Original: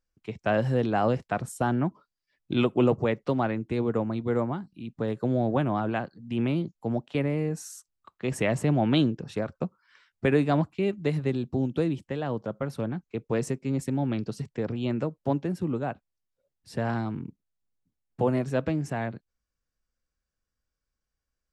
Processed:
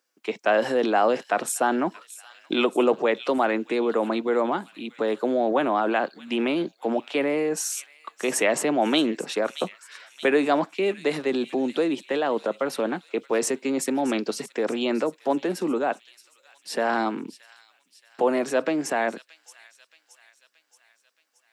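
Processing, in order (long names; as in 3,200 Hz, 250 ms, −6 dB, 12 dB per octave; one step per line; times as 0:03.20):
Bessel high-pass filter 410 Hz, order 6
delay with a high-pass on its return 625 ms, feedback 54%, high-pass 3,300 Hz, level −14 dB
in parallel at −2 dB: compressor whose output falls as the input rises −37 dBFS
on the sum: level +5.5 dB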